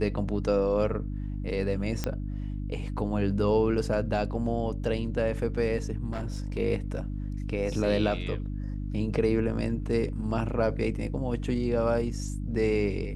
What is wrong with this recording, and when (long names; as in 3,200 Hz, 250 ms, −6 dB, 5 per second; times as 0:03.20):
mains hum 50 Hz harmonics 6 −33 dBFS
0:02.04: click −14 dBFS
0:06.12–0:06.58: clipping −28 dBFS